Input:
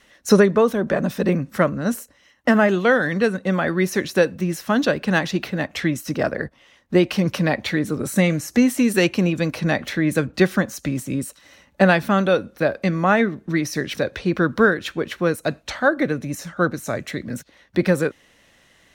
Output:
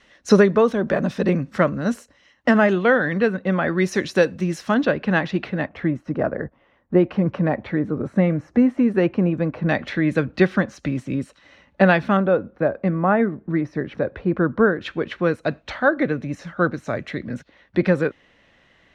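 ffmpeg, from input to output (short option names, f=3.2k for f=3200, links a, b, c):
-af "asetnsamples=n=441:p=0,asendcmd='2.73 lowpass f 3000;3.78 lowpass f 6600;4.74 lowpass f 2700;5.69 lowpass f 1300;9.69 lowpass f 3300;12.17 lowpass f 1300;14.81 lowpass f 3200',lowpass=5.3k"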